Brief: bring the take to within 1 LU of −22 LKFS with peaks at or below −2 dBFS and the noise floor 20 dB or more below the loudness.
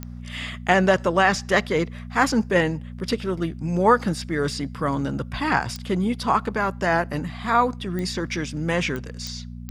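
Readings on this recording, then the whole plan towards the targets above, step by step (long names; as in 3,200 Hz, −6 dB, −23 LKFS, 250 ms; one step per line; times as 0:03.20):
number of clicks 6; mains hum 60 Hz; hum harmonics up to 240 Hz; level of the hum −33 dBFS; integrated loudness −23.5 LKFS; sample peak −4.5 dBFS; target loudness −22.0 LKFS
→ click removal
hum removal 60 Hz, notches 4
level +1.5 dB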